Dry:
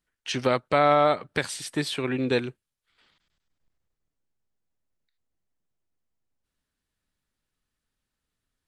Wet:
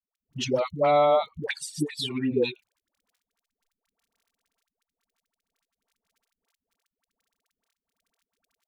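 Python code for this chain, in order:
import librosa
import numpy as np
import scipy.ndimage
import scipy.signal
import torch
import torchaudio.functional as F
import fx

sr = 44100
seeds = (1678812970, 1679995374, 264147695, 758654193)

y = fx.bin_expand(x, sr, power=2.0)
y = fx.low_shelf(y, sr, hz=110.0, db=-9.0)
y = fx.dmg_crackle(y, sr, seeds[0], per_s=28.0, level_db=-53.0)
y = fx.env_flanger(y, sr, rest_ms=4.4, full_db=-26.5)
y = fx.dispersion(y, sr, late='highs', ms=127.0, hz=480.0)
y = y * 10.0 ** (5.0 / 20.0)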